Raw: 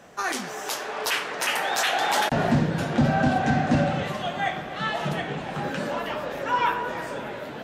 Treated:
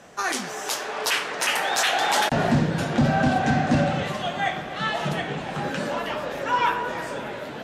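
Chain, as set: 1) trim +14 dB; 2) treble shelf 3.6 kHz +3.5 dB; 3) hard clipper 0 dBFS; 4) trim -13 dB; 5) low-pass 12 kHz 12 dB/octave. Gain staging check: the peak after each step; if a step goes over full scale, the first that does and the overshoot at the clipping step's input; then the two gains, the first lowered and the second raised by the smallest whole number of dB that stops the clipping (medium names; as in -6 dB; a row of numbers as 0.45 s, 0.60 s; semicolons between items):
+4.5 dBFS, +4.5 dBFS, 0.0 dBFS, -13.0 dBFS, -12.0 dBFS; step 1, 4.5 dB; step 1 +9 dB, step 4 -8 dB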